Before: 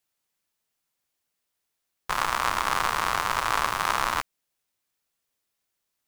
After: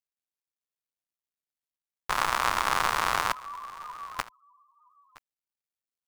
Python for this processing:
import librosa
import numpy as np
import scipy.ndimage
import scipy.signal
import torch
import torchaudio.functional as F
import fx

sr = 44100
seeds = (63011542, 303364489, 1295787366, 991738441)

y = fx.law_mismatch(x, sr, coded='A')
y = fx.spec_topn(y, sr, count=1, at=(3.32, 4.19))
y = y + 10.0 ** (-21.5 / 20.0) * np.pad(y, (int(968 * sr / 1000.0), 0))[:len(y)]